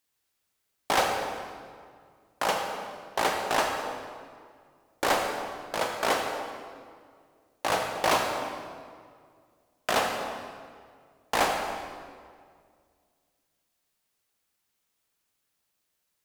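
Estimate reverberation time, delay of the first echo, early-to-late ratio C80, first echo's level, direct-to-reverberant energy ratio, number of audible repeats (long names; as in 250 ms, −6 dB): 2.0 s, no echo audible, 4.5 dB, no echo audible, 2.5 dB, no echo audible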